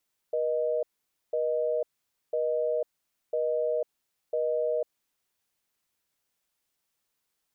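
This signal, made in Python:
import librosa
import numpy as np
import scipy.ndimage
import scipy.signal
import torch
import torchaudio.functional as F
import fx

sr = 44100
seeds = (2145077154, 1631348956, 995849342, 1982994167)

y = fx.call_progress(sr, length_s=4.5, kind='busy tone', level_db=-27.5)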